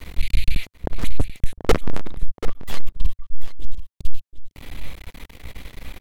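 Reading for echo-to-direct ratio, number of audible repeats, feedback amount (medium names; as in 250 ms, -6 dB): -12.5 dB, 1, no regular repeats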